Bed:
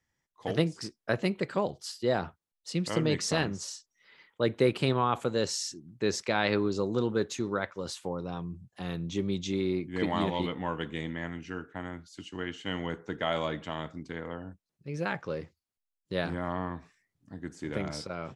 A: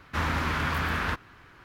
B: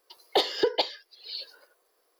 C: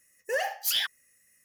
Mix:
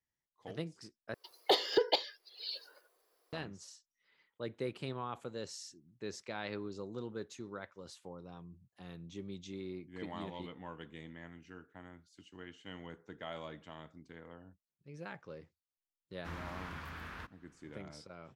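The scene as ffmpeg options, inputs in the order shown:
-filter_complex "[0:a]volume=-14dB,asplit=2[a][b];[a]atrim=end=1.144[c];[2:a]atrim=end=2.19,asetpts=PTS-STARTPTS,volume=-4.5dB[d];[b]atrim=start=3.326[e];[1:a]atrim=end=1.64,asetpts=PTS-STARTPTS,volume=-18dB,afade=t=in:d=0.004:c=hsin,afade=t=out:st=1.636:d=0.004:c=hsin,adelay=16110[f];[c][d]acrossfade=d=0.004:c1=hsin:c2=hsin[g];[g][e]acrossfade=d=0.004:c1=hsin:c2=hsin[h];[h][f]amix=inputs=2:normalize=0"

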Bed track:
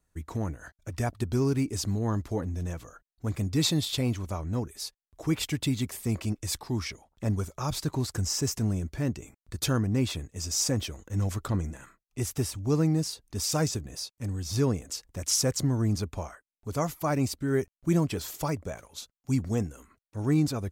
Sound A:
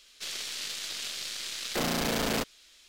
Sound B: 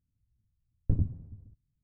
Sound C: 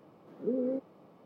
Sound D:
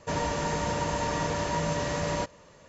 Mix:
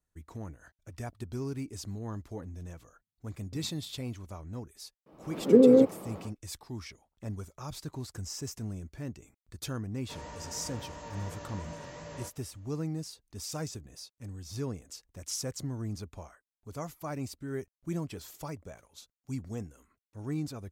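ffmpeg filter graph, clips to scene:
-filter_complex "[0:a]volume=-10dB[a];[2:a]highpass=220[b];[3:a]dynaudnorm=f=120:g=3:m=16dB[c];[4:a]flanger=delay=17:depth=5.8:speed=2.9[d];[b]atrim=end=1.83,asetpts=PTS-STARTPTS,volume=-10dB,afade=t=in:d=0.004:c=hsin,afade=t=out:st=1.826:d=0.004:c=hsin,adelay=2630[e];[c]atrim=end=1.25,asetpts=PTS-STARTPTS,volume=-2dB,afade=t=in:d=0.004:c=hsin,afade=t=out:st=1.246:d=0.004:c=hsin,adelay=5060[f];[d]atrim=end=2.68,asetpts=PTS-STARTPTS,volume=-12.5dB,afade=t=in:d=0.004:c=hsin,afade=t=out:st=2.676:d=0.004:c=hsin,adelay=441882S[g];[a][e][f][g]amix=inputs=4:normalize=0"

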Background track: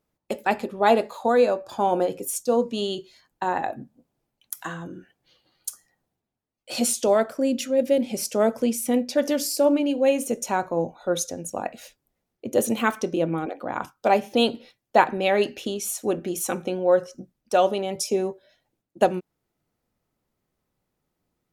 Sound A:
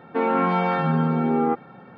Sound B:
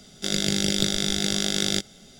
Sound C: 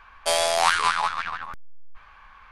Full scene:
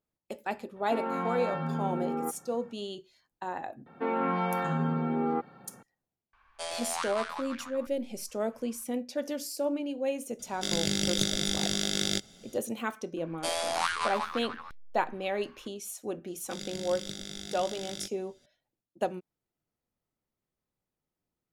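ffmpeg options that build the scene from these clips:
-filter_complex "[1:a]asplit=2[a][b];[3:a]asplit=2[c][d];[2:a]asplit=2[e][f];[0:a]volume=-11dB[g];[c]aresample=22050,aresample=44100[h];[a]atrim=end=1.97,asetpts=PTS-STARTPTS,volume=-11.5dB,afade=t=in:d=0.004:c=hsin,afade=t=out:st=1.966:d=0.004:c=hsin,adelay=760[i];[b]atrim=end=1.97,asetpts=PTS-STARTPTS,volume=-8dB,afade=t=in:d=0.004:c=hsin,afade=t=out:st=1.966:d=0.004:c=hsin,adelay=3860[j];[h]atrim=end=2.51,asetpts=PTS-STARTPTS,volume=-15dB,afade=t=in:d=0.004:c=hsin,afade=t=out:st=2.506:d=0.004:c=hsin,adelay=6330[k];[e]atrim=end=2.19,asetpts=PTS-STARTPTS,volume=-5dB,afade=t=in:d=0.004:c=hsin,afade=t=out:st=2.186:d=0.004:c=hsin,adelay=10390[l];[d]atrim=end=2.51,asetpts=PTS-STARTPTS,volume=-9.5dB,afade=t=in:d=0.004:c=hsin,afade=t=out:st=2.506:d=0.004:c=hsin,adelay=13170[m];[f]atrim=end=2.19,asetpts=PTS-STARTPTS,volume=-16.5dB,afade=t=in:d=0.004:c=hsin,afade=t=out:st=2.186:d=0.004:c=hsin,adelay=16270[n];[g][i][j][k][l][m][n]amix=inputs=7:normalize=0"

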